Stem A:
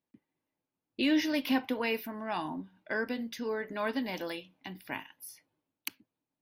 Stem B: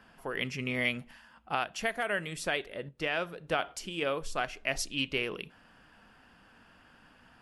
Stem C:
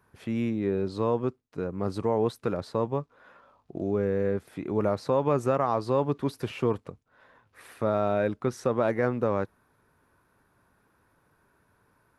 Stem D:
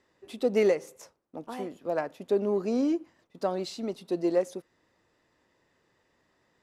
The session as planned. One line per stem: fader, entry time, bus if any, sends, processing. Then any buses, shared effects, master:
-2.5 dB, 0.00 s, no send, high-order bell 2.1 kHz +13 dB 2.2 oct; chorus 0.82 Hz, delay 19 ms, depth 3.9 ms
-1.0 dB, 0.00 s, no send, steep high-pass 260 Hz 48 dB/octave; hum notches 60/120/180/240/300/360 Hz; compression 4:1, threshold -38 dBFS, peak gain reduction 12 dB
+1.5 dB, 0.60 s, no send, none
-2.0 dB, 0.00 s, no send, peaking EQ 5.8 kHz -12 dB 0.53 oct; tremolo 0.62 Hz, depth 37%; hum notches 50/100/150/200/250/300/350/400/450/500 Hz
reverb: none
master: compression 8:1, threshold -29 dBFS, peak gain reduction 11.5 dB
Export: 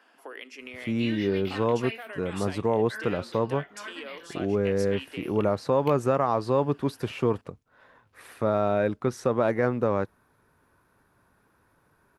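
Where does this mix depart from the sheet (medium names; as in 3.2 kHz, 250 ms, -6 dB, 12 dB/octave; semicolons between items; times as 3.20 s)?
stem A -2.5 dB -> -13.0 dB; stem D: muted; master: missing compression 8:1, threshold -29 dBFS, peak gain reduction 11.5 dB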